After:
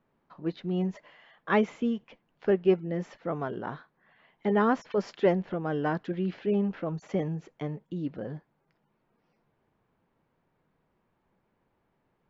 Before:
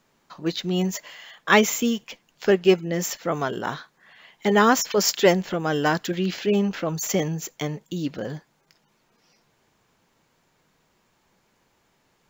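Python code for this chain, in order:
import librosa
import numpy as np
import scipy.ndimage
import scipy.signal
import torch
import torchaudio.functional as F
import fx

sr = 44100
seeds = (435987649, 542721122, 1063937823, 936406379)

y = fx.spacing_loss(x, sr, db_at_10k=43)
y = y * librosa.db_to_amplitude(-4.0)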